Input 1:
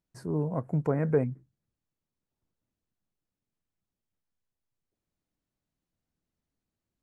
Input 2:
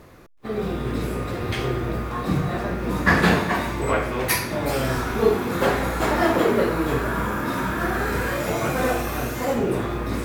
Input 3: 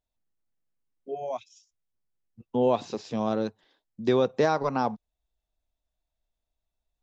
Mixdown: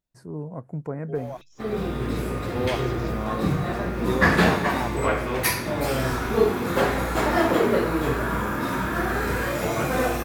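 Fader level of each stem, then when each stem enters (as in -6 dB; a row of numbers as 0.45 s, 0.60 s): -4.0 dB, -1.0 dB, -4.5 dB; 0.00 s, 1.15 s, 0.00 s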